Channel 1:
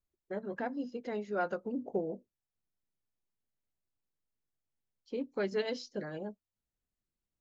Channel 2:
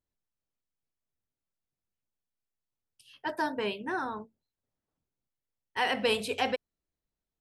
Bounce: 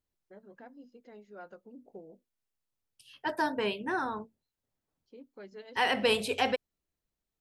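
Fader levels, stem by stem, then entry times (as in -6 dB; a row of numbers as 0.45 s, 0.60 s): -14.5 dB, +1.0 dB; 0.00 s, 0.00 s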